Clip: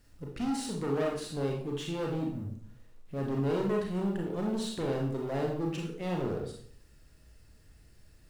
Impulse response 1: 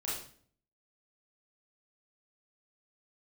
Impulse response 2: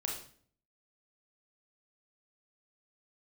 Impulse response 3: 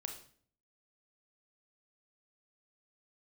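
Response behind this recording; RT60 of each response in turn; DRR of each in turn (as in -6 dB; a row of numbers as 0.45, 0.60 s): 2; 0.50, 0.50, 0.50 s; -7.5, -1.0, 3.5 dB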